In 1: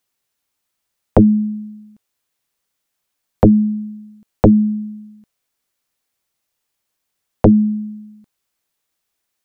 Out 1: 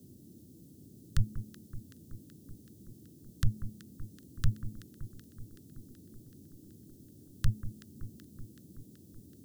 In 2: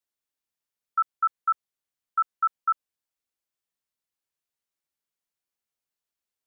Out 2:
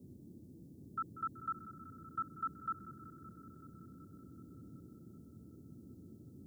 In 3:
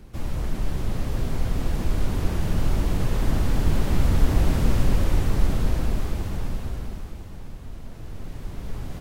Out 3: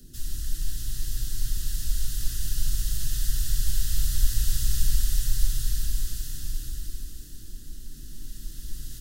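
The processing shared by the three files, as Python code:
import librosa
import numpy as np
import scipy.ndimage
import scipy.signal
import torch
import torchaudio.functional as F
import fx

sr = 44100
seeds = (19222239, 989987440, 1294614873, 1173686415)

y = scipy.signal.sosfilt(scipy.signal.ellip(3, 1.0, 40, [110.0, 1900.0], 'bandstop', fs=sr, output='sos'), x)
y = fx.high_shelf(y, sr, hz=2500.0, db=11.5)
y = fx.fixed_phaser(y, sr, hz=450.0, stages=8)
y = fx.dmg_noise_band(y, sr, seeds[0], low_hz=74.0, high_hz=320.0, level_db=-55.0)
y = fx.echo_alternate(y, sr, ms=189, hz=1400.0, feedback_pct=80, wet_db=-12)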